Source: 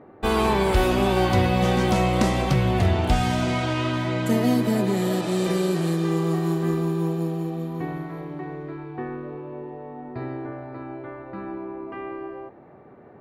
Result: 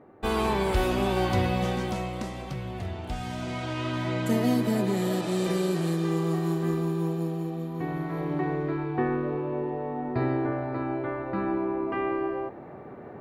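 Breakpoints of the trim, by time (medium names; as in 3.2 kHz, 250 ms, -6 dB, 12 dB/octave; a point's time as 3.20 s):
1.51 s -5 dB
2.28 s -14 dB
3.03 s -14 dB
4.08 s -3.5 dB
7.73 s -3.5 dB
8.33 s +5.5 dB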